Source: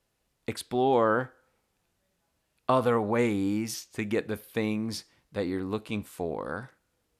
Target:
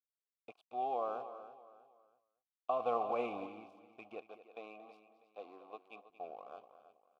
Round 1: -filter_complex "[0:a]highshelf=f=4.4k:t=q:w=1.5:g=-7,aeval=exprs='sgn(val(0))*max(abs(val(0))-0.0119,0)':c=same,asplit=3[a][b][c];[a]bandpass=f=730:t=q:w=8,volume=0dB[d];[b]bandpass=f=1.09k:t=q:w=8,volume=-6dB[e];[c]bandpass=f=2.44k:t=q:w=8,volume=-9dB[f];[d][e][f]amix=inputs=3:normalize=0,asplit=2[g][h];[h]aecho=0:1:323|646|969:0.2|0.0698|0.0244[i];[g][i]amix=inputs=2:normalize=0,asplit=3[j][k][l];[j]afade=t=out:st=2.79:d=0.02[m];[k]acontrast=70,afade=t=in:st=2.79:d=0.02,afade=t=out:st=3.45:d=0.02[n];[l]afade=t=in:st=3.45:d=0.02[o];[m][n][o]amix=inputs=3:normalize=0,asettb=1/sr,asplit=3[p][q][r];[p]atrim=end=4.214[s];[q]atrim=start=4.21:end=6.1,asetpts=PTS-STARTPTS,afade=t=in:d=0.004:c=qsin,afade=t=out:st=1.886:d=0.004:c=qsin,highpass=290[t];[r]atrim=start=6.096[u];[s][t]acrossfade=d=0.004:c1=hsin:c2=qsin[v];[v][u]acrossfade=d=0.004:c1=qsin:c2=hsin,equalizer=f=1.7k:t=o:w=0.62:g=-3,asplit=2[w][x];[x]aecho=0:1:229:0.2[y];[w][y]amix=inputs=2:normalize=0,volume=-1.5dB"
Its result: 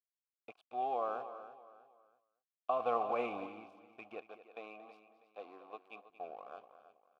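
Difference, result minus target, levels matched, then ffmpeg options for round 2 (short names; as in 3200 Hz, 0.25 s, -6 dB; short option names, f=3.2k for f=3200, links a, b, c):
2000 Hz band +2.5 dB
-filter_complex "[0:a]highshelf=f=4.4k:t=q:w=1.5:g=-7,aeval=exprs='sgn(val(0))*max(abs(val(0))-0.0119,0)':c=same,asplit=3[a][b][c];[a]bandpass=f=730:t=q:w=8,volume=0dB[d];[b]bandpass=f=1.09k:t=q:w=8,volume=-6dB[e];[c]bandpass=f=2.44k:t=q:w=8,volume=-9dB[f];[d][e][f]amix=inputs=3:normalize=0,asplit=2[g][h];[h]aecho=0:1:323|646|969:0.2|0.0698|0.0244[i];[g][i]amix=inputs=2:normalize=0,asplit=3[j][k][l];[j]afade=t=out:st=2.79:d=0.02[m];[k]acontrast=70,afade=t=in:st=2.79:d=0.02,afade=t=out:st=3.45:d=0.02[n];[l]afade=t=in:st=3.45:d=0.02[o];[m][n][o]amix=inputs=3:normalize=0,asettb=1/sr,asplit=3[p][q][r];[p]atrim=end=4.214[s];[q]atrim=start=4.21:end=6.1,asetpts=PTS-STARTPTS,afade=t=in:d=0.004:c=qsin,afade=t=out:st=1.886:d=0.004:c=qsin,highpass=290[t];[r]atrim=start=6.096[u];[s][t]acrossfade=d=0.004:c1=hsin:c2=qsin[v];[v][u]acrossfade=d=0.004:c1=qsin:c2=hsin,equalizer=f=1.7k:t=o:w=0.62:g=-12.5,asplit=2[w][x];[x]aecho=0:1:229:0.2[y];[w][y]amix=inputs=2:normalize=0,volume=-1.5dB"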